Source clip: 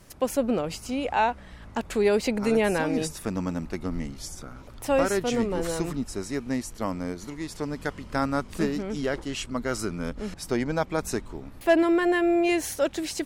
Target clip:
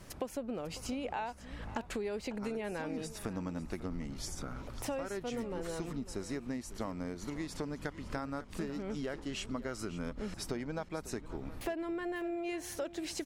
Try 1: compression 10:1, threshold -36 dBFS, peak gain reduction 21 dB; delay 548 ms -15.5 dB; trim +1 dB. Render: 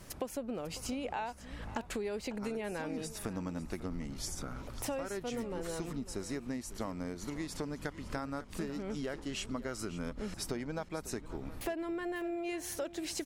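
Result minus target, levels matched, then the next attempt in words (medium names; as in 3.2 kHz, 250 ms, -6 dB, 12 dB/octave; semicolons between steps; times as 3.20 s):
8 kHz band +2.5 dB
compression 10:1, threshold -36 dBFS, peak gain reduction 21 dB; treble shelf 7.1 kHz -5.5 dB; delay 548 ms -15.5 dB; trim +1 dB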